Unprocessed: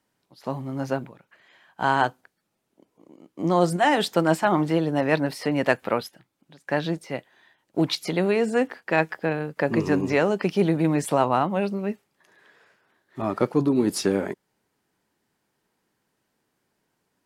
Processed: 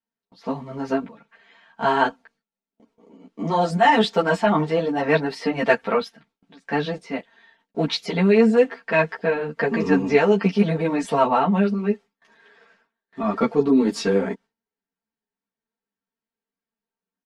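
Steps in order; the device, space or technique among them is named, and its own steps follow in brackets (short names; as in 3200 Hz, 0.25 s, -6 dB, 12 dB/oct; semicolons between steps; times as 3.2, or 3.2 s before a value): comb 4.4 ms, depth 94%; string-machine ensemble chorus (ensemble effect; LPF 5300 Hz 12 dB/oct); gate with hold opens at -55 dBFS; gain +3.5 dB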